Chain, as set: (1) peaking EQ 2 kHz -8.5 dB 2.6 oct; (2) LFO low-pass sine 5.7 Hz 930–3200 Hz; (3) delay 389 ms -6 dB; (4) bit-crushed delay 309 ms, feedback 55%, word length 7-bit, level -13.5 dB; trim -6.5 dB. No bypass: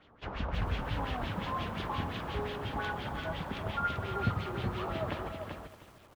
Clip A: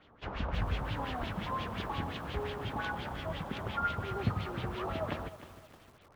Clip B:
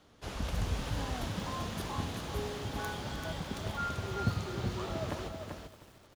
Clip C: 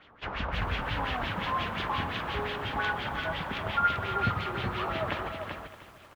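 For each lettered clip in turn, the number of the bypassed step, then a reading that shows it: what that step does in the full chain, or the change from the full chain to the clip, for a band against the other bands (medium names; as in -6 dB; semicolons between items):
3, momentary loudness spread change -2 LU; 2, 8 kHz band +13.5 dB; 1, 125 Hz band -5.5 dB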